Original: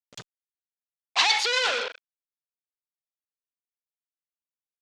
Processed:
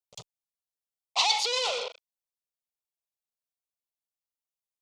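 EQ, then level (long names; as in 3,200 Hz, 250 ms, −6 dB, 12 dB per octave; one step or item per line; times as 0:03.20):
phaser with its sweep stopped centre 680 Hz, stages 4
0.0 dB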